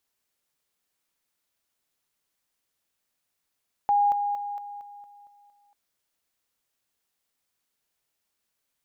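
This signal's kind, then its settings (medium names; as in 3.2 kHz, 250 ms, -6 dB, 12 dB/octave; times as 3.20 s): level ladder 817 Hz -18 dBFS, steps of -6 dB, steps 8, 0.23 s 0.00 s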